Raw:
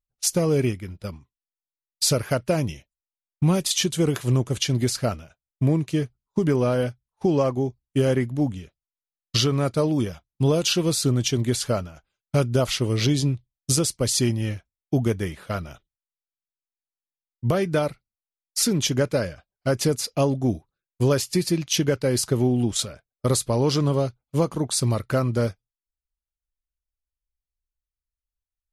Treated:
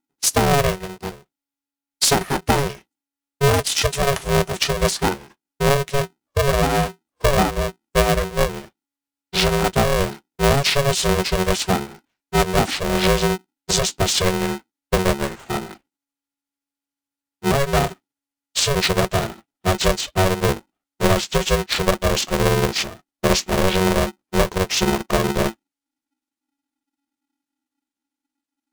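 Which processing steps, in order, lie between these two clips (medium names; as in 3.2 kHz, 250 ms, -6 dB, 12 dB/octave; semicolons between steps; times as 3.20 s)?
pitch bend over the whole clip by -9.5 st starting unshifted; polarity switched at an audio rate 280 Hz; trim +4.5 dB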